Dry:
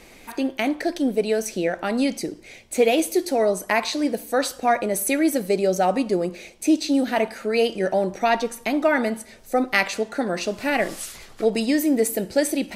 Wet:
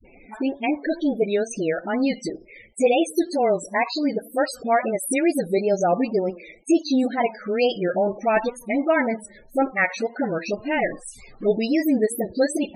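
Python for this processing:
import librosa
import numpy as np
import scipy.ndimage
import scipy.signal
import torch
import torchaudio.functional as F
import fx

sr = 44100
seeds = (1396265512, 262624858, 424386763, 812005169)

y = fx.wow_flutter(x, sr, seeds[0], rate_hz=2.1, depth_cents=110.0)
y = fx.spec_topn(y, sr, count=32)
y = fx.dispersion(y, sr, late='highs', ms=47.0, hz=360.0)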